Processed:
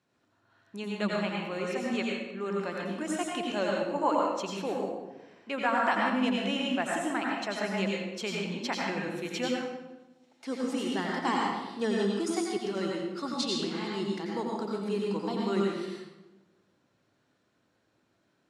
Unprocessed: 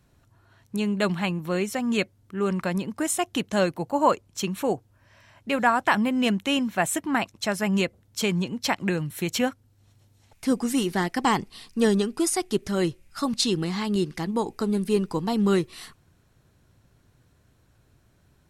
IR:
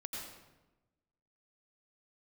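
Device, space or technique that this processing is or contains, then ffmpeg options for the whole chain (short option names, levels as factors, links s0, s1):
supermarket ceiling speaker: -filter_complex "[0:a]asettb=1/sr,asplit=3[s0][s1][s2];[s0]atrim=end=9.454[s3];[s1]atrim=start=9.45:end=10.64,asetpts=PTS-STARTPTS,afade=t=in:d=0.004:c=qsin,afade=t=out:st=1.186:d=0.004:c=qsin,highpass=240[s4];[s2]atrim=start=10.636[s5];[s3][s4]acrossfade=d=0.004:c1=hsin:c2=qsin[s6];[s6][s5]acrossfade=d=0.004:c1=qsin:c2=hsin,highpass=250,lowpass=6100[s7];[1:a]atrim=start_sample=2205[s8];[s7][s8]afir=irnorm=-1:irlink=0,volume=0.668"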